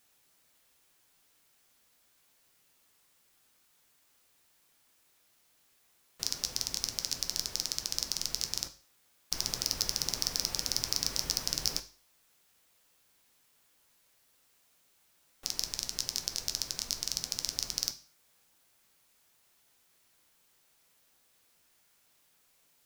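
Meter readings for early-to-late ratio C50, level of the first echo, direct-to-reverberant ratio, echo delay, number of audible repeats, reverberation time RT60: 14.5 dB, no echo, 8.0 dB, no echo, no echo, 0.45 s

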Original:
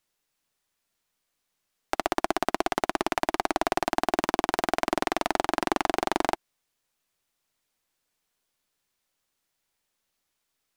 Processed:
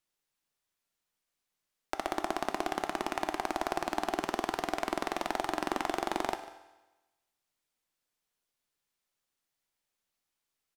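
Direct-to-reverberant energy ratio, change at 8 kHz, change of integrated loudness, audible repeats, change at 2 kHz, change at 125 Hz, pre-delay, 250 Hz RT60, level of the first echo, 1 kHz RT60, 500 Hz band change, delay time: 8.0 dB, -6.5 dB, -6.5 dB, 1, -6.5 dB, -6.5 dB, 4 ms, 1.1 s, -18.0 dB, 1.1 s, -6.5 dB, 147 ms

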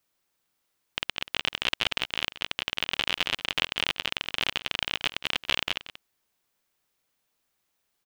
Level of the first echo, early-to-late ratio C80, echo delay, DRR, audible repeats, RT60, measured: -15.0 dB, no reverb, 183 ms, no reverb, 1, no reverb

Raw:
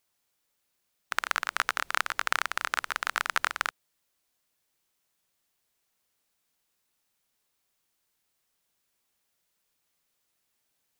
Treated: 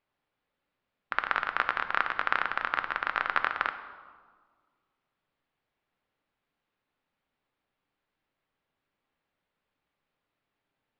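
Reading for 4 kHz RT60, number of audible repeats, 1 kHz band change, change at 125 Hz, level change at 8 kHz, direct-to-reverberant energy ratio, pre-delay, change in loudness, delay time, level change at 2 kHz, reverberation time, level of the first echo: 1.0 s, no echo, +1.5 dB, no reading, under -25 dB, 8.0 dB, 4 ms, 0.0 dB, no echo, 0.0 dB, 1.6 s, no echo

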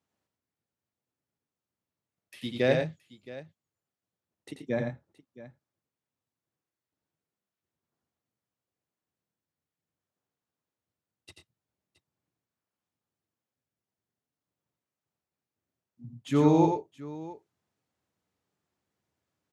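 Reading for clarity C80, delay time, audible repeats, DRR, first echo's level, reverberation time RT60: no reverb, 87 ms, 2, no reverb, -5.0 dB, no reverb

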